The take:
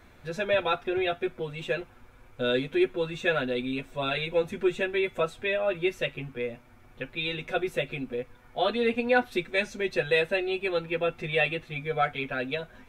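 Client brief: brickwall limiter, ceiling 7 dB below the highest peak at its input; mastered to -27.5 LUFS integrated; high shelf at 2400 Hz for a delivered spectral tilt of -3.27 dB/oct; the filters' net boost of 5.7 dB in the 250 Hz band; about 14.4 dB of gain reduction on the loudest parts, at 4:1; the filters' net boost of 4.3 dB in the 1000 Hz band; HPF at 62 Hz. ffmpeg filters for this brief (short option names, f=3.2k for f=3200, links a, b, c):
-af "highpass=62,equalizer=f=250:t=o:g=7.5,equalizer=f=1k:t=o:g=4.5,highshelf=f=2.4k:g=7.5,acompressor=threshold=-33dB:ratio=4,volume=9.5dB,alimiter=limit=-17.5dB:level=0:latency=1"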